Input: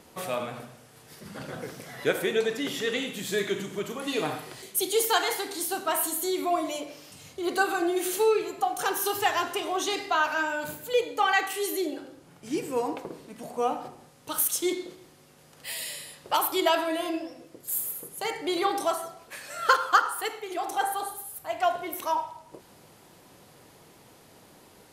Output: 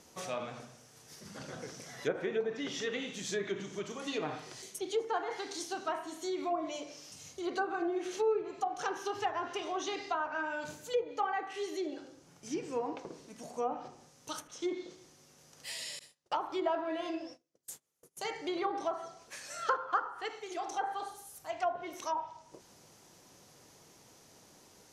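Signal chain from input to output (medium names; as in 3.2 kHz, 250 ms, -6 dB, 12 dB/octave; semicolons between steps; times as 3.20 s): low-pass that closes with the level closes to 1.1 kHz, closed at -21 dBFS; 15.99–18.17 s: gate -42 dBFS, range -30 dB; peaking EQ 6 kHz +12 dB 0.57 oct; trim -7 dB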